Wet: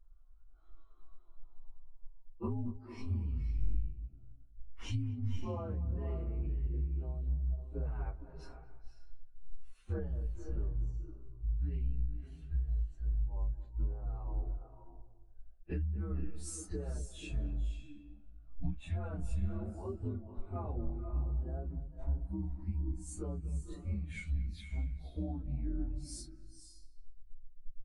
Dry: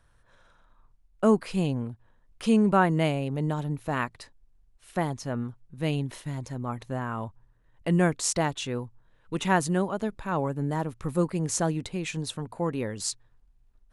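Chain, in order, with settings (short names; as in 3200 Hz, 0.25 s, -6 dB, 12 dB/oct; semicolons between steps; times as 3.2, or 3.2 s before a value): inharmonic rescaling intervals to 126%; resonant low shelf 130 Hz +9 dB, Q 1.5; limiter -21 dBFS, peak gain reduction 9.5 dB; compressor 16:1, threshold -41 dBFS, peak gain reduction 17.5 dB; tape echo 0.117 s, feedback 35%, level -9.5 dB, low-pass 3200 Hz; on a send at -5 dB: reverb RT60 0.60 s, pre-delay 0.195 s; on the sum: speed mistake 15 ips tape played at 7.5 ips; spectral expander 1.5:1; gain +9 dB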